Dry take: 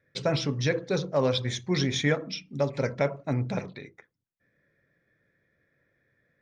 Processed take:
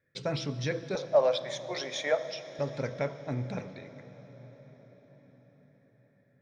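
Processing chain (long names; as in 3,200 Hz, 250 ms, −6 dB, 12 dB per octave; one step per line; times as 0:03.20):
0:00.95–0:02.59: high-pass with resonance 630 Hz, resonance Q 4.9
on a send: convolution reverb RT60 6.3 s, pre-delay 10 ms, DRR 12 dB
on the sum: level −6 dB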